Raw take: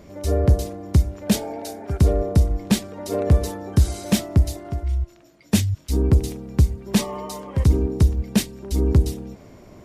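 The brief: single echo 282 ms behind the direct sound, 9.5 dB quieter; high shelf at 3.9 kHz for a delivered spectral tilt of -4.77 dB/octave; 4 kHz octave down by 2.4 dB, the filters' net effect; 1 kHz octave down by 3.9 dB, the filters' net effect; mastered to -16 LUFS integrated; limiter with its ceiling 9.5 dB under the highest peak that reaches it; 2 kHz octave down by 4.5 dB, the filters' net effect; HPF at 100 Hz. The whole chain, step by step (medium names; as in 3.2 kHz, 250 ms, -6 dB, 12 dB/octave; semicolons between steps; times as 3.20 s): high-pass 100 Hz; peaking EQ 1 kHz -5 dB; peaking EQ 2 kHz -4.5 dB; treble shelf 3.9 kHz +9 dB; peaking EQ 4 kHz -8 dB; peak limiter -14.5 dBFS; delay 282 ms -9.5 dB; trim +11.5 dB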